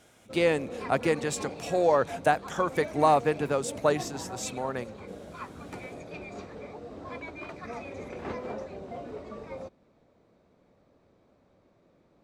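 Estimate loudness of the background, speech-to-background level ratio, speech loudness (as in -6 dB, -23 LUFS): -40.5 LUFS, 13.0 dB, -27.5 LUFS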